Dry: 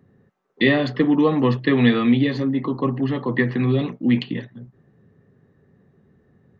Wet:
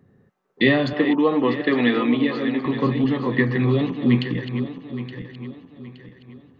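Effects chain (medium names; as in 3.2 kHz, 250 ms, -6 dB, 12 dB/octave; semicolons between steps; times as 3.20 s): backward echo that repeats 435 ms, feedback 60%, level -9 dB; 0.93–2.66 s: band-pass 260–4100 Hz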